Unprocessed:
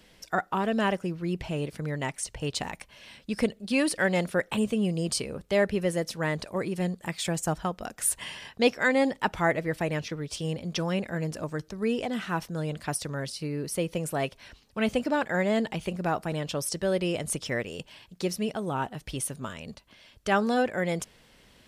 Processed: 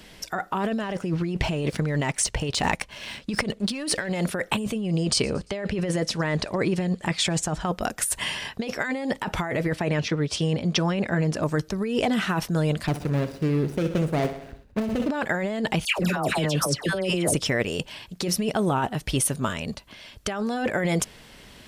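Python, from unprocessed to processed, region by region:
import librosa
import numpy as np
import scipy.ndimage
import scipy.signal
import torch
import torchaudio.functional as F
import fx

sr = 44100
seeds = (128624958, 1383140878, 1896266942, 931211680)

y = fx.chain(x, sr, fx.lowpass(hz=9100.0, slope=12),
    fx.leveller(passes=1), at=(0.83, 4.1))
y = fx.chain(y, sr, fx.lowpass(hz=7000.0, slope=12),
    fx.echo_wet_highpass(ms=115, feedback_pct=52, hz=4300.0, wet_db=-22.5), at=(4.81, 7.68))
y = fx.chain(y, sr, fx.highpass(hz=71.0, slope=12),
    fx.air_absorb(metres=52.0), at=(9.73, 11.43))
y = fx.chain(y, sr, fx.median_filter(points=41),
    fx.echo_feedback(ms=63, feedback_pct=57, wet_db=-13), at=(12.87, 15.09))
y = fx.chain(y, sr, fx.highpass(hz=42.0, slope=12),
    fx.dispersion(late='lows', ms=125.0, hz=1400.0),
    fx.band_squash(depth_pct=70), at=(15.85, 17.34))
y = fx.notch(y, sr, hz=510.0, q=16.0)
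y = fx.over_compress(y, sr, threshold_db=-31.0, ratio=-1.0)
y = y * librosa.db_to_amplitude(6.5)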